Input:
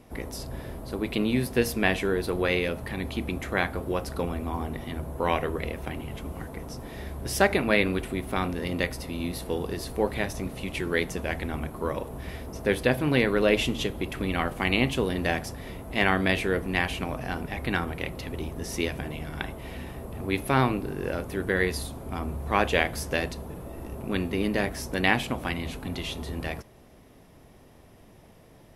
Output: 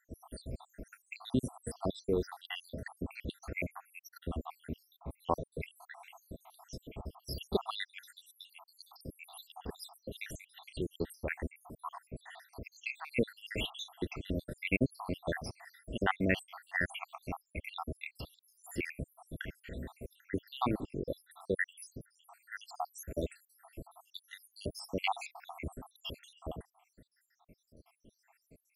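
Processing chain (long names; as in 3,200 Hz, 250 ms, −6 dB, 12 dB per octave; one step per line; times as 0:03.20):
time-frequency cells dropped at random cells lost 83%
0:01.48–0:02.07: low-pass filter 11,000 Hz 24 dB per octave
level −3.5 dB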